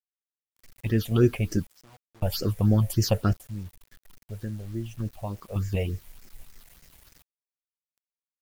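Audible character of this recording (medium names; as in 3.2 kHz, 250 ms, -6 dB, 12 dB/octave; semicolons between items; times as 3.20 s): random-step tremolo 1.8 Hz, depth 100%; phasing stages 6, 3.4 Hz, lowest notch 300–1000 Hz; a quantiser's noise floor 10-bit, dither none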